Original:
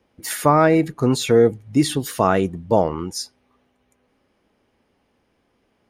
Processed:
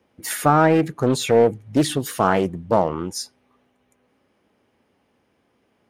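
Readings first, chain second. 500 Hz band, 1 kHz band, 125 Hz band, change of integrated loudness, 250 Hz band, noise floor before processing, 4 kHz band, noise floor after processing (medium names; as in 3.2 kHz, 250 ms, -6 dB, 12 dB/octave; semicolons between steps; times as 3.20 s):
-1.0 dB, +0.5 dB, -1.0 dB, -1.0 dB, -1.5 dB, -67 dBFS, -1.0 dB, -67 dBFS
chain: in parallel at -10.5 dB: overload inside the chain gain 20.5 dB; on the sum: high-pass 78 Hz; peaking EQ 4.7 kHz -2.5 dB; loudspeaker Doppler distortion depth 0.42 ms; trim -1.5 dB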